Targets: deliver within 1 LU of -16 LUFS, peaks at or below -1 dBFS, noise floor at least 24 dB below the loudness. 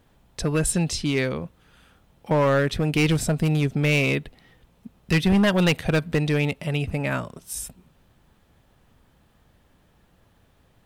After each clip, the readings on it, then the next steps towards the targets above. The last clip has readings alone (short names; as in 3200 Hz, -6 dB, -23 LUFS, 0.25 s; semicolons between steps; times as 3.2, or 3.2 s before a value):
clipped 1.4%; flat tops at -14.5 dBFS; loudness -23.0 LUFS; peak -14.5 dBFS; loudness target -16.0 LUFS
-> clip repair -14.5 dBFS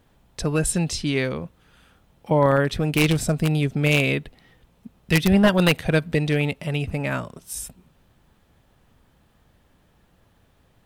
clipped 0.0%; loudness -22.0 LUFS; peak -5.5 dBFS; loudness target -16.0 LUFS
-> gain +6 dB; limiter -1 dBFS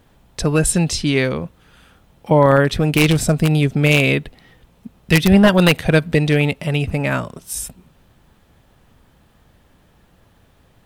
loudness -16.5 LUFS; peak -1.0 dBFS; noise floor -55 dBFS